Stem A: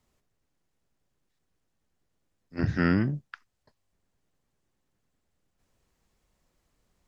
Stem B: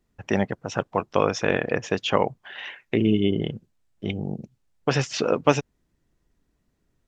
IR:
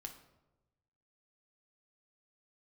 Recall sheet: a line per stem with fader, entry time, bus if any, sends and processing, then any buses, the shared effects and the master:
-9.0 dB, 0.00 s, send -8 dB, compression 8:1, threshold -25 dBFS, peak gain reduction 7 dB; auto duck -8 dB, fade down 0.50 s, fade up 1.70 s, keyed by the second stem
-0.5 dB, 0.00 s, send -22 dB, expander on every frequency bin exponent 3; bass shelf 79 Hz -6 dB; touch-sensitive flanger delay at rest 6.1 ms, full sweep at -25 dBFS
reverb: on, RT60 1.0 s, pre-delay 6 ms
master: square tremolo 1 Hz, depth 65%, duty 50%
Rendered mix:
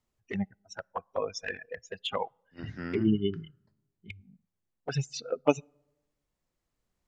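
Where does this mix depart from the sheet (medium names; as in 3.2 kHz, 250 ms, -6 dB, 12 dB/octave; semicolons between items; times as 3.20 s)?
stem A: missing compression 8:1, threshold -25 dBFS, peak gain reduction 7 dB; master: missing square tremolo 1 Hz, depth 65%, duty 50%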